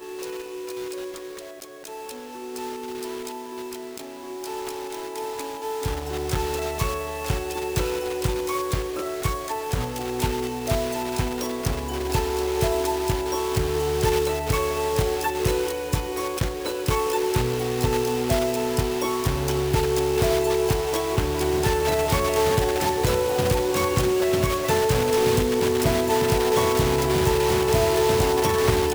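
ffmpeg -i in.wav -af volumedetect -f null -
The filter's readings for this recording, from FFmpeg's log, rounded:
mean_volume: -23.8 dB
max_volume: -7.7 dB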